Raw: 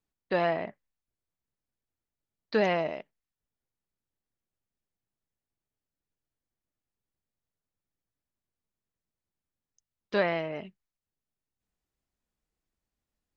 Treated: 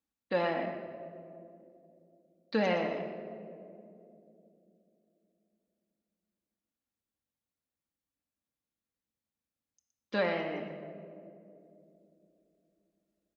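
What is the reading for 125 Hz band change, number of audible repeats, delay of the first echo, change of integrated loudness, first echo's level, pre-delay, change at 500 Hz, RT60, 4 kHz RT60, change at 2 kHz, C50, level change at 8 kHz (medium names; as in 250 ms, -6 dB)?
-2.5 dB, 1, 118 ms, -5.0 dB, -9.5 dB, 3 ms, -3.0 dB, 2.8 s, 1.2 s, -3.0 dB, 6.0 dB, no reading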